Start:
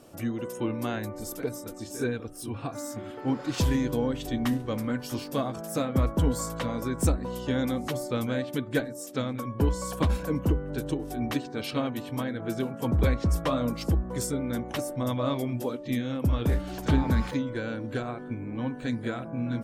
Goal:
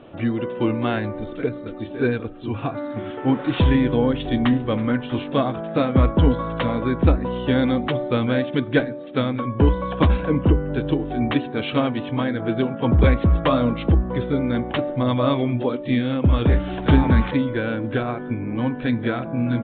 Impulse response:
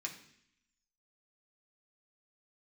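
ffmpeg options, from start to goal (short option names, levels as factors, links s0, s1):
-filter_complex "[0:a]asettb=1/sr,asplit=3[s0][s1][s2];[s0]atrim=end=1.314[s3];[s1]atrim=start=1.31:end=1.74,asetpts=PTS-STARTPTS,afade=t=in:d=0.004:c=qsin,afade=t=out:st=0.426:d=0.004:c=qsin,equalizer=f=850:w=2.1:g=-7.5[s4];[s2]atrim=start=1.736[s5];[s3][s4]acrossfade=d=0.004:c1=hsin:c2=qsin[s6];[s6][s5]acrossfade=d=0.004:c1=qsin:c2=hsin,asplit=2[s7][s8];[1:a]atrim=start_sample=2205[s9];[s8][s9]afir=irnorm=-1:irlink=0,volume=0.158[s10];[s7][s10]amix=inputs=2:normalize=0,aresample=8000,aresample=44100,volume=2.51"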